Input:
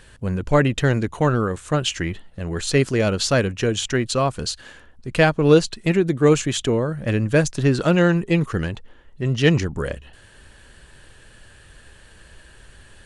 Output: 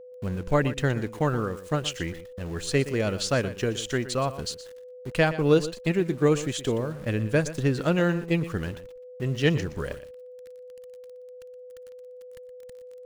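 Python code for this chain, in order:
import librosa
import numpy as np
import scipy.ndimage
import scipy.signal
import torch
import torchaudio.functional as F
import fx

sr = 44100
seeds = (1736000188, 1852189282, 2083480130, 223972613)

y = np.where(np.abs(x) >= 10.0 ** (-36.5 / 20.0), x, 0.0)
y = fx.transient(y, sr, attack_db=2, sustain_db=-2)
y = y + 10.0 ** (-36.0 / 20.0) * np.sin(2.0 * np.pi * 500.0 * np.arange(len(y)) / sr)
y = y + 10.0 ** (-14.5 / 20.0) * np.pad(y, (int(120 * sr / 1000.0), 0))[:len(y)]
y = y * librosa.db_to_amplitude(-7.0)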